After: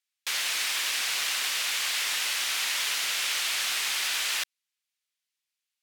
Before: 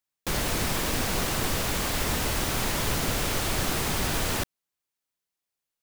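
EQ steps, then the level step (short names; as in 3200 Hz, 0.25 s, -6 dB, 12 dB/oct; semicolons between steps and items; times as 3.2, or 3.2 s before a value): band-pass 2500 Hz, Q 1; tilt +4 dB/oct; 0.0 dB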